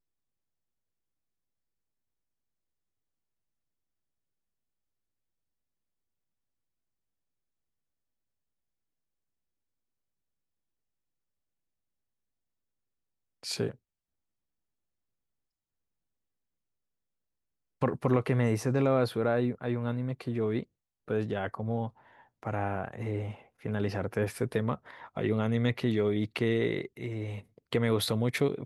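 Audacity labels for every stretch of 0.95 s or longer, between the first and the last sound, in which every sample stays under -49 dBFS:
13.750000	17.810000	silence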